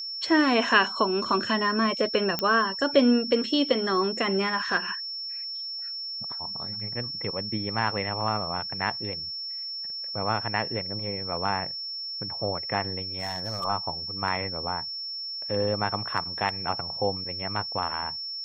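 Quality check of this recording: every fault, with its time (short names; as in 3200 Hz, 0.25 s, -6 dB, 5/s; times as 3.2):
tone 5400 Hz -32 dBFS
2.39 pop -11 dBFS
13.18–13.65 clipped -25.5 dBFS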